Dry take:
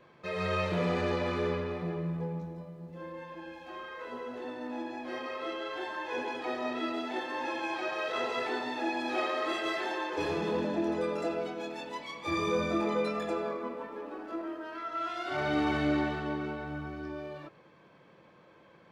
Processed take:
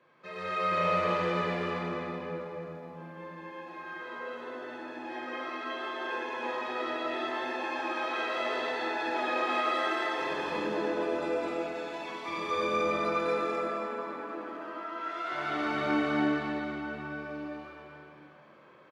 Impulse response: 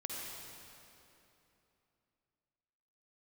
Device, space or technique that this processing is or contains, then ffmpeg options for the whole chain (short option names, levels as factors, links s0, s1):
stadium PA: -filter_complex "[0:a]highpass=150,equalizer=f=1500:t=o:w=1.7:g=5,aecho=1:1:207|256.6:0.794|0.708[s0];[1:a]atrim=start_sample=2205[s1];[s0][s1]afir=irnorm=-1:irlink=0,volume=0.562"